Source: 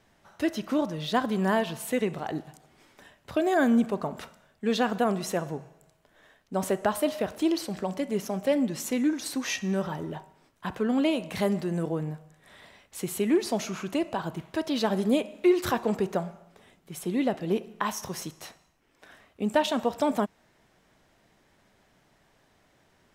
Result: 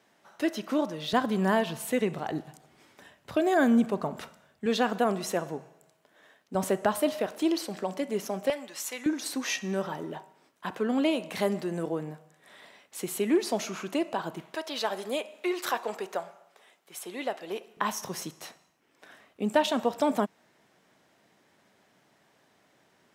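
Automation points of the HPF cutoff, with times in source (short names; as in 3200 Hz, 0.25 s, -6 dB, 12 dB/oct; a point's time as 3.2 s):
230 Hz
from 1.13 s 86 Hz
from 4.66 s 200 Hz
from 6.55 s 92 Hz
from 7.2 s 240 Hz
from 8.5 s 830 Hz
from 9.06 s 230 Hz
from 14.55 s 590 Hz
from 17.77 s 160 Hz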